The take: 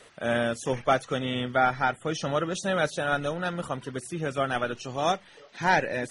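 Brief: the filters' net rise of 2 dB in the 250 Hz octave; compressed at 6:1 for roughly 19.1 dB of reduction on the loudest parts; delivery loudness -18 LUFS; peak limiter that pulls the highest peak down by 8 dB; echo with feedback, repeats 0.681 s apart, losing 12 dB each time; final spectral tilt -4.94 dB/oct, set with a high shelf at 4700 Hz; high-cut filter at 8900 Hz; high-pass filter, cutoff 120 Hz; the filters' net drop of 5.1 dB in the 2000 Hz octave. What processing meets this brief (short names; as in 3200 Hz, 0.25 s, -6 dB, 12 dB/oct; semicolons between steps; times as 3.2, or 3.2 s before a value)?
HPF 120 Hz; LPF 8900 Hz; bell 250 Hz +3 dB; bell 2000 Hz -6.5 dB; high shelf 4700 Hz -7 dB; compressor 6:1, threshold -40 dBFS; limiter -34.5 dBFS; feedback echo 0.681 s, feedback 25%, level -12 dB; gain +28 dB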